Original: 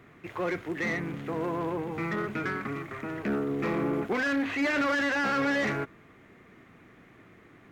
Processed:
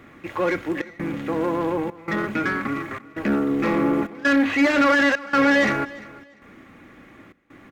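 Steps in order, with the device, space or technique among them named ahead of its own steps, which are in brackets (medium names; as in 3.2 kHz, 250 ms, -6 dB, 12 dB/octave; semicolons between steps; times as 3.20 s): comb 3.6 ms, depth 42%; trance gate with a delay (trance gate "xxxxxxxxx..x" 166 bpm -24 dB; feedback delay 347 ms, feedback 24%, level -20 dB); trim +7 dB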